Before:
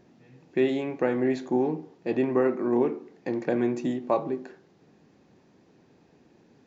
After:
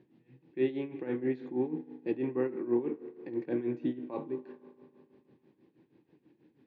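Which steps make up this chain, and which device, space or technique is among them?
combo amplifier with spring reverb and tremolo (spring tank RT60 2.8 s, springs 36 ms, chirp 70 ms, DRR 13.5 dB; tremolo 6.2 Hz, depth 78%; speaker cabinet 92–3800 Hz, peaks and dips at 130 Hz +5 dB, 320 Hz +9 dB, 670 Hz -9 dB, 1300 Hz -7 dB); gain -6.5 dB

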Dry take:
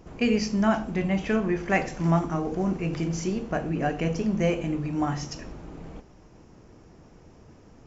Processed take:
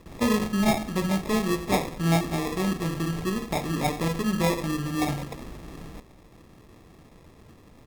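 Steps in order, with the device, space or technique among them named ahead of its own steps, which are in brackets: crushed at another speed (playback speed 0.8×; sample-and-hold 37×; playback speed 1.25×)

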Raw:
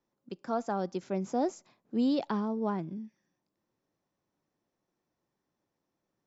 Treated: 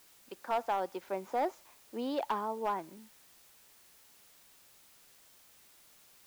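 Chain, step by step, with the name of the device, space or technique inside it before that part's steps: drive-through speaker (BPF 550–2800 Hz; bell 920 Hz +6 dB 0.25 oct; hard clip -27.5 dBFS, distortion -15 dB; white noise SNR 22 dB); gain +2.5 dB

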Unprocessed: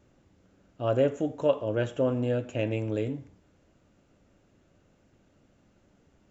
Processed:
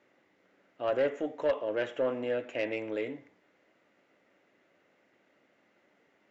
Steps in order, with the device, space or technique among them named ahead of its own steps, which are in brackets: intercom (BPF 380–4200 Hz; bell 2000 Hz +10.5 dB 0.37 oct; soft clip -20.5 dBFS, distortion -15 dB)

